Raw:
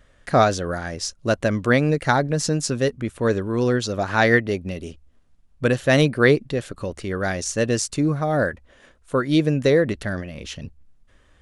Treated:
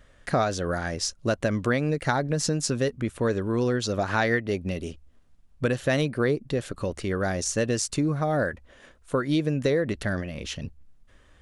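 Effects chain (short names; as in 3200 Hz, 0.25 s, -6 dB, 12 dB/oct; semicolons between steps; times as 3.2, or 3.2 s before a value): 6.1–7.52 dynamic EQ 2600 Hz, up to -7 dB, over -33 dBFS, Q 0.72; compressor 3:1, threshold -22 dBFS, peak gain reduction 8.5 dB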